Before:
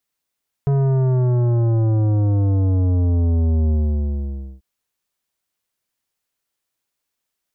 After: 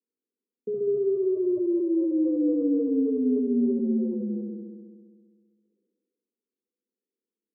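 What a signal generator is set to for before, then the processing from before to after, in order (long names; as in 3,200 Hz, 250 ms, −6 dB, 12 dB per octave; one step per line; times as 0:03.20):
bass drop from 140 Hz, over 3.94 s, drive 12 dB, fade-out 0.91 s, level −15.5 dB
Chebyshev band-pass filter 200–500 Hz, order 5
on a send: flutter between parallel walls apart 11.4 metres, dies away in 1.5 s
on the sum: level that may fall only so fast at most 33 dB per second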